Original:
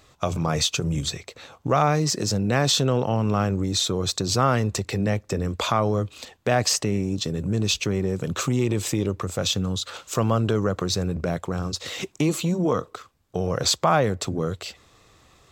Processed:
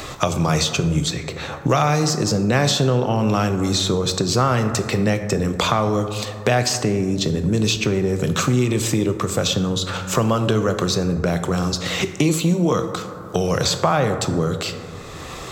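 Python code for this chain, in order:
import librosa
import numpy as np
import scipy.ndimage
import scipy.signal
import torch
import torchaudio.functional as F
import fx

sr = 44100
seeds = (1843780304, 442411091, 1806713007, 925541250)

y = fx.rev_plate(x, sr, seeds[0], rt60_s=1.3, hf_ratio=0.4, predelay_ms=0, drr_db=8.0)
y = fx.band_squash(y, sr, depth_pct=70)
y = y * 10.0 ** (3.5 / 20.0)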